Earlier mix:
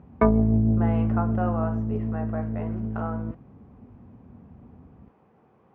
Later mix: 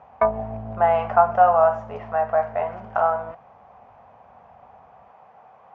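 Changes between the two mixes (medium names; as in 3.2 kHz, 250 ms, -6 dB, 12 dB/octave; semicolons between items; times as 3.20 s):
speech +9.5 dB; master: add resonant low shelf 480 Hz -12.5 dB, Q 3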